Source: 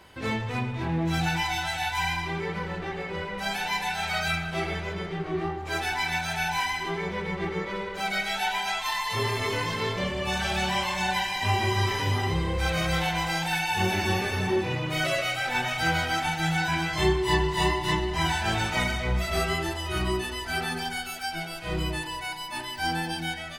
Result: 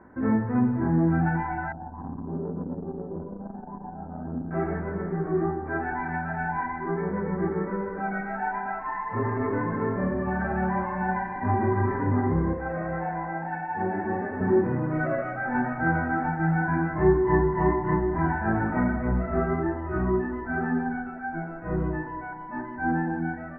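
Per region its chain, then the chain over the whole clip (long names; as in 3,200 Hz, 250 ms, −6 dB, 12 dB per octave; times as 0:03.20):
0:01.72–0:04.51: Gaussian smoothing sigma 11 samples + saturating transformer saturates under 320 Hz
0:12.53–0:14.41: Chebyshev low-pass with heavy ripple 2,700 Hz, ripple 6 dB + low-shelf EQ 110 Hz −7.5 dB
whole clip: elliptic low-pass filter 1,700 Hz, stop band 50 dB; parametric band 250 Hz +14 dB 0.87 octaves; hum removal 45.16 Hz, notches 18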